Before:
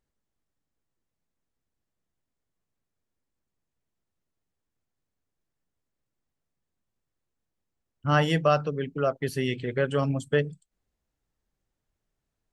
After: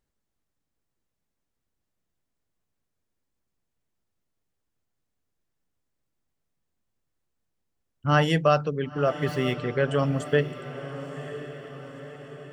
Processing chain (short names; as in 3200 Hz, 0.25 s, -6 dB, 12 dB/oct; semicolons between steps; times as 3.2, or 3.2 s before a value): 9.07–9.56 median filter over 5 samples; on a send: diffused feedback echo 1.01 s, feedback 55%, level -12.5 dB; on the sum: gain +1.5 dB